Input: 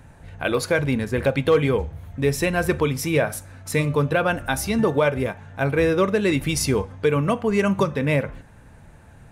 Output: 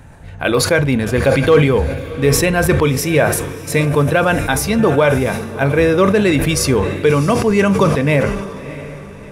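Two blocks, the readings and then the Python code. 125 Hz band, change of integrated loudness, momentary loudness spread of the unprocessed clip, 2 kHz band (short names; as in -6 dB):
+8.0 dB, +7.0 dB, 7 LU, +7.0 dB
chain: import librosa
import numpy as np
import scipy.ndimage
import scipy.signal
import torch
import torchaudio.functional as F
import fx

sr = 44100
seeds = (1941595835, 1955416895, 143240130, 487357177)

p1 = x + fx.echo_diffused(x, sr, ms=666, feedback_pct=41, wet_db=-14.5, dry=0)
p2 = fx.sustainer(p1, sr, db_per_s=50.0)
y = p2 * 10.0 ** (6.0 / 20.0)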